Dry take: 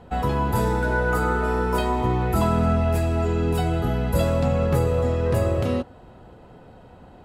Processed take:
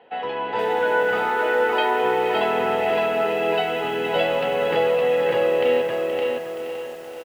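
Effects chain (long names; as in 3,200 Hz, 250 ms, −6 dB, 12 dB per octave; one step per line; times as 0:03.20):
loudspeaker in its box 320–3,200 Hz, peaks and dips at 470 Hz +8 dB, 820 Hz +6 dB, 1,200 Hz −7 dB, 1,900 Hz +6 dB, 2,900 Hz +8 dB
automatic gain control gain up to 5 dB
spectral tilt +2.5 dB per octave
repeating echo 564 ms, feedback 26%, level −3.5 dB
feedback echo at a low word length 473 ms, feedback 55%, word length 6 bits, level −10 dB
level −4 dB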